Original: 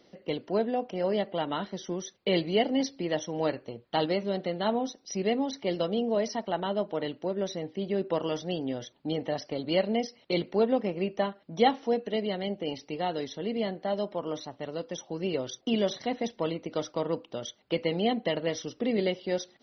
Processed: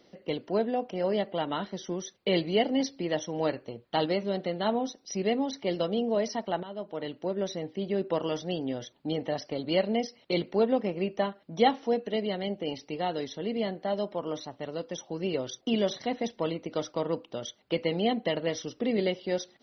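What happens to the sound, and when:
0:06.63–0:07.29: fade in, from −13.5 dB

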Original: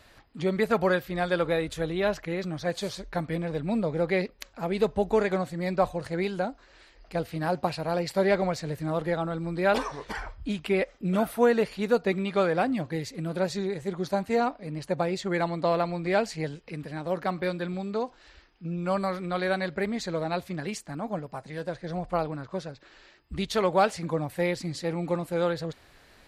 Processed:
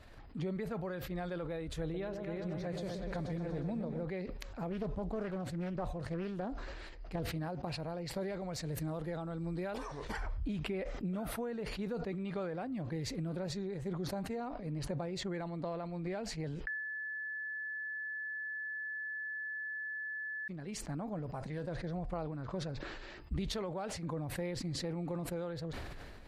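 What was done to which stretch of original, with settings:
0:01.82–0:04.05: echo whose low-pass opens from repeat to repeat 120 ms, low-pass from 750 Hz, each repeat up 2 octaves, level −6 dB
0:04.70–0:07.22: highs frequency-modulated by the lows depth 0.47 ms
0:08.21–0:10.27: high-shelf EQ 5,700 Hz +11 dB
0:16.67–0:20.48: beep over 1,730 Hz −10 dBFS
whole clip: downward compressor 10 to 1, threshold −35 dBFS; spectral tilt −2 dB per octave; level that may fall only so fast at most 24 dB per second; level −4.5 dB

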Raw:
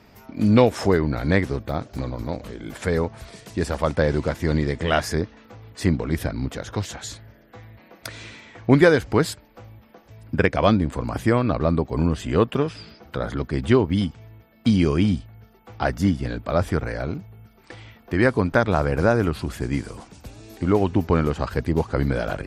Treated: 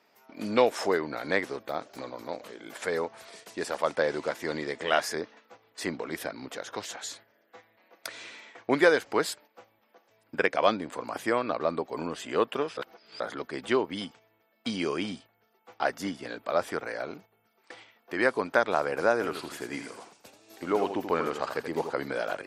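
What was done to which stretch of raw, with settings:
0:12.77–0:13.20: reverse
0:19.13–0:21.93: repeating echo 83 ms, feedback 19%, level −8 dB
whole clip: high-pass filter 440 Hz 12 dB per octave; noise gate −47 dBFS, range −7 dB; level −3 dB

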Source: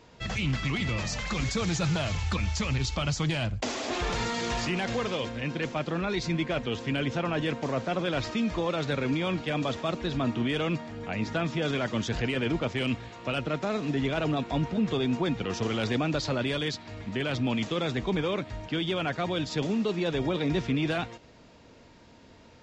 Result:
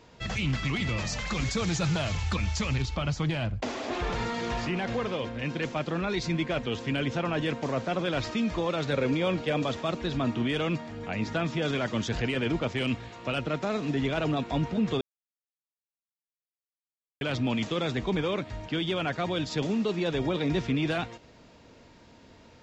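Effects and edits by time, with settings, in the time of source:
0:02.82–0:05.39: low-pass filter 2,500 Hz 6 dB per octave
0:08.93–0:09.64: parametric band 510 Hz +7 dB 0.49 octaves
0:15.01–0:17.21: silence

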